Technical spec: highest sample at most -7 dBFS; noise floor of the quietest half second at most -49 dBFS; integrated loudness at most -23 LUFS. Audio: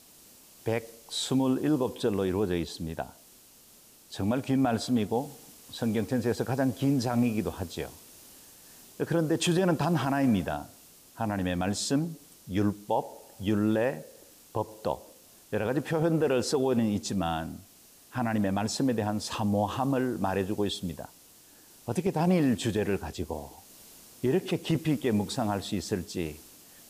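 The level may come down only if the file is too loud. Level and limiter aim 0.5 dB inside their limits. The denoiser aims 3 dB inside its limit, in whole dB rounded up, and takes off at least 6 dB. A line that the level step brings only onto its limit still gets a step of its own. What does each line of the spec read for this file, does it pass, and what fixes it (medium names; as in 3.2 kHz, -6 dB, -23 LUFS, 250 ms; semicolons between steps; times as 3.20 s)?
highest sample -15.5 dBFS: pass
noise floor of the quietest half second -56 dBFS: pass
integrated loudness -29.5 LUFS: pass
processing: none needed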